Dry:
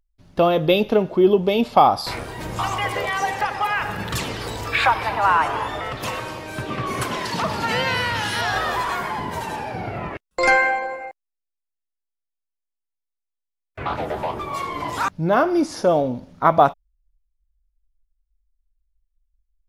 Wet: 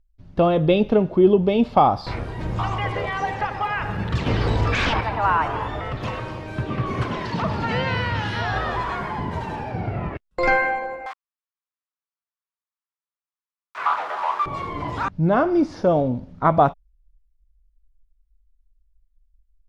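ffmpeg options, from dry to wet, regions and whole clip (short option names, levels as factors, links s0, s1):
-filter_complex "[0:a]asettb=1/sr,asplit=3[s0][s1][s2];[s0]atrim=end=4.264[s3];[s1]atrim=start=4.26:end=5.01,asetpts=PTS-STARTPTS,afade=t=in:d=0.004:c=qsin,afade=t=out:st=0.746:d=0.004:c=qsin,acontrast=77,aeval=exprs='0.224*(abs(mod(val(0)/0.224+3,4)-2)-1)':c=same[s4];[s2]atrim=start=5.006[s5];[s3][s4]acrossfade=d=0.004:c1=hsin:c2=qsin[s6];[s6][s5]acrossfade=d=0.004:c1=qsin:c2=hsin,asettb=1/sr,asplit=3[s7][s8][s9];[s7]atrim=end=11.064[s10];[s8]atrim=start=11.06:end=14.46,asetpts=PTS-STARTPTS,afade=t=in:d=0.004:c=qsin,afade=t=out:st=3.396:d=0.004:c=qsin,aeval=exprs='val(0)+0.5*0.0398*sgn(val(0))':c=same,highpass=f=1100:t=q:w=3[s11];[s9]atrim=start=14.456[s12];[s10][s11]acrossfade=d=0.004:c1=hsin:c2=qsin[s13];[s13][s12]acrossfade=d=0.004:c1=qsin:c2=hsin,aemphasis=mode=reproduction:type=50fm,acrossover=split=6100[s14][s15];[s15]acompressor=threshold=0.00112:ratio=4:attack=1:release=60[s16];[s14][s16]amix=inputs=2:normalize=0,lowshelf=f=210:g=11,volume=0.708"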